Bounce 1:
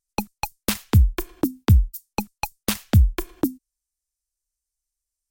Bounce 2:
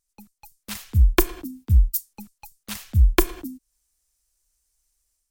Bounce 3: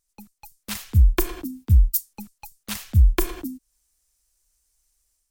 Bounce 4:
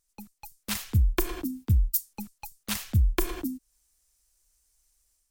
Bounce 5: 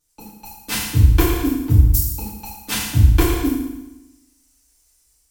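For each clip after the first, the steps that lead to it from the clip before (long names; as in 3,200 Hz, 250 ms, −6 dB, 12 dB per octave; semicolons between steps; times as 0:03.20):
volume swells 324 ms; automatic gain control gain up to 8 dB; level +4.5 dB
brickwall limiter −10.5 dBFS, peak gain reduction 8.5 dB; level +2.5 dB
downward compressor 4 to 1, threshold −20 dBFS, peak gain reduction 8.5 dB
feedback delay network reverb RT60 1 s, low-frequency decay 1.1×, high-frequency decay 0.9×, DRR −10 dB; highs frequency-modulated by the lows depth 0.16 ms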